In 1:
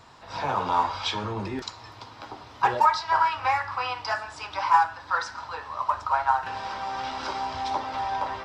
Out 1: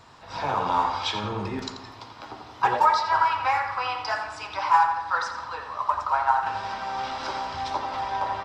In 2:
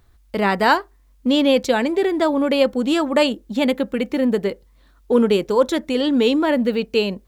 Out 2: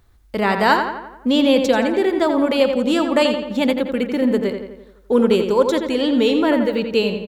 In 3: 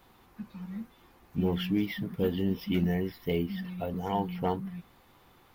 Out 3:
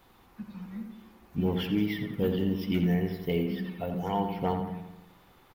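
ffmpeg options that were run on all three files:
-filter_complex "[0:a]asplit=2[a][b];[b]adelay=86,lowpass=f=3.6k:p=1,volume=-6.5dB,asplit=2[c][d];[d]adelay=86,lowpass=f=3.6k:p=1,volume=0.55,asplit=2[e][f];[f]adelay=86,lowpass=f=3.6k:p=1,volume=0.55,asplit=2[g][h];[h]adelay=86,lowpass=f=3.6k:p=1,volume=0.55,asplit=2[i][j];[j]adelay=86,lowpass=f=3.6k:p=1,volume=0.55,asplit=2[k][l];[l]adelay=86,lowpass=f=3.6k:p=1,volume=0.55,asplit=2[m][n];[n]adelay=86,lowpass=f=3.6k:p=1,volume=0.55[o];[a][c][e][g][i][k][m][o]amix=inputs=8:normalize=0"

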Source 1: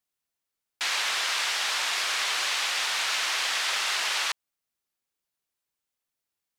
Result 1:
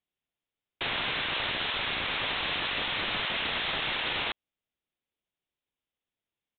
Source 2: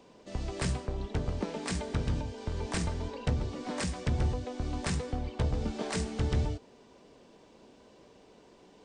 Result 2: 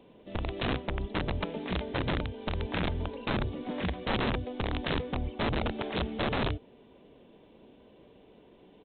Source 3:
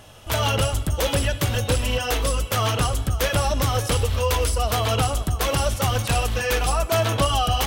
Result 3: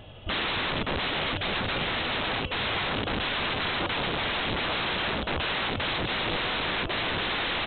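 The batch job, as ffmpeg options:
-af "equalizer=f=1.3k:t=o:w=1.7:g=-7.5,aresample=8000,aeval=exprs='(mod(21.1*val(0)+1,2)-1)/21.1':c=same,aresample=44100,volume=2.5dB"

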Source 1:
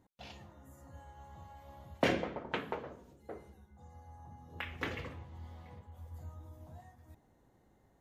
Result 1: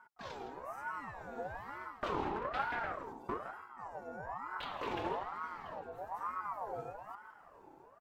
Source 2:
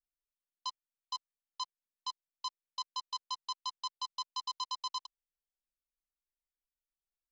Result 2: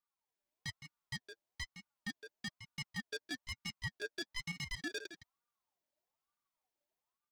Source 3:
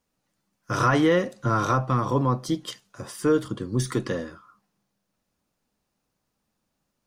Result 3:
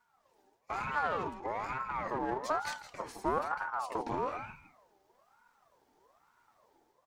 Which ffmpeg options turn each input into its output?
-filter_complex "[0:a]flanger=delay=4:depth=4.8:regen=19:speed=0.38:shape=sinusoidal,equalizer=f=100:t=o:w=0.67:g=11,equalizer=f=250:t=o:w=0.67:g=4,equalizer=f=1k:t=o:w=0.67:g=3,equalizer=f=10k:t=o:w=0.67:g=-4,areverse,acompressor=threshold=-36dB:ratio=10,areverse,alimiter=level_in=12dB:limit=-24dB:level=0:latency=1:release=122,volume=-12dB,dynaudnorm=f=120:g=5:m=5dB,equalizer=f=290:t=o:w=0.62:g=12.5,aeval=exprs='clip(val(0),-1,0.015)':c=same,asplit=2[a][b];[b]adelay=163.3,volume=-10dB,highshelf=f=4k:g=-3.67[c];[a][c]amix=inputs=2:normalize=0,aeval=exprs='val(0)*sin(2*PI*890*n/s+890*0.35/1.1*sin(2*PI*1.1*n/s))':c=same,volume=3.5dB"

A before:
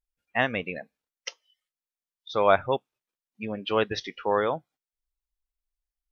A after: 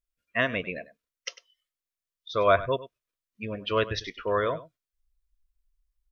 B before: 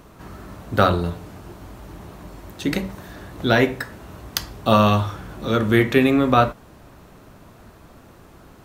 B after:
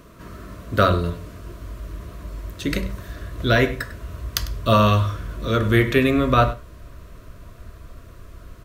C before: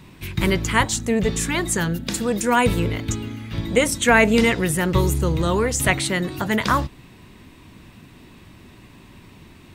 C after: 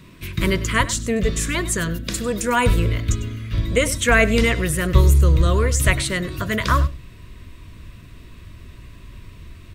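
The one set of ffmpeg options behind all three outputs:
-filter_complex "[0:a]asubboost=boost=6:cutoff=83,asuperstop=centerf=820:order=12:qfactor=3.7,asplit=2[a][b];[b]aecho=0:1:99:0.15[c];[a][c]amix=inputs=2:normalize=0"

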